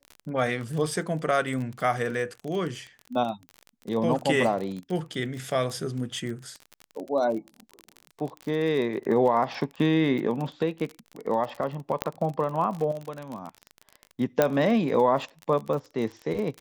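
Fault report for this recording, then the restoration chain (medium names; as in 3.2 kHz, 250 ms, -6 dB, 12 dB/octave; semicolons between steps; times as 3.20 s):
crackle 30 per s -31 dBFS
12.02 s: pop -9 dBFS
14.42 s: pop -7 dBFS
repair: de-click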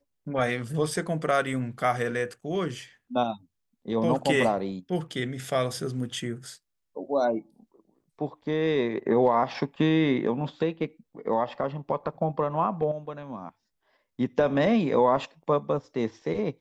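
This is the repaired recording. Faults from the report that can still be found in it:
nothing left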